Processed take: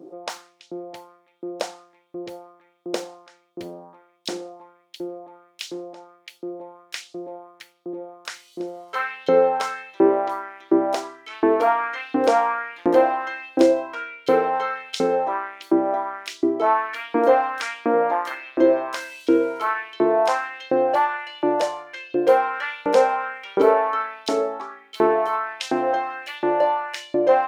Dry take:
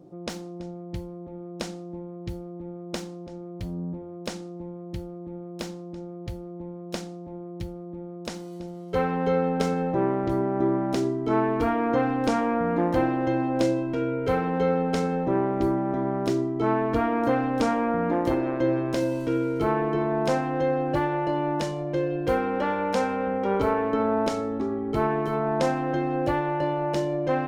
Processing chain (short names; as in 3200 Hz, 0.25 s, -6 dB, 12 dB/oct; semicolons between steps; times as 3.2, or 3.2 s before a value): LFO high-pass saw up 1.4 Hz 300–3900 Hz; gain +3.5 dB